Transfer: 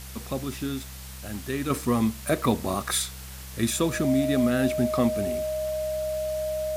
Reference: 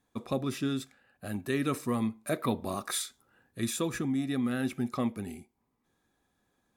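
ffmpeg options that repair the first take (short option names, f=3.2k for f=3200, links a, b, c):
-af "bandreject=f=65:t=h:w=4,bandreject=f=130:t=h:w=4,bandreject=f=195:t=h:w=4,bandreject=f=620:w=30,afwtdn=0.0071,asetnsamples=n=441:p=0,asendcmd='1.7 volume volume -6.5dB',volume=0dB"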